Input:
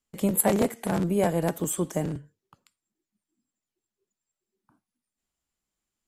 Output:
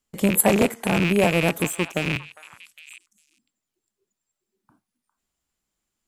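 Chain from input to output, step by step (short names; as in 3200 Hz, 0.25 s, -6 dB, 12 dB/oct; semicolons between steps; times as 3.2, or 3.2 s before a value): rattling part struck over -34 dBFS, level -18 dBFS; 1.67–2.07 power-law curve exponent 1.4; on a send: delay with a stepping band-pass 0.404 s, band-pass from 1200 Hz, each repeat 1.4 oct, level -12 dB; on the sum: gain +4.5 dB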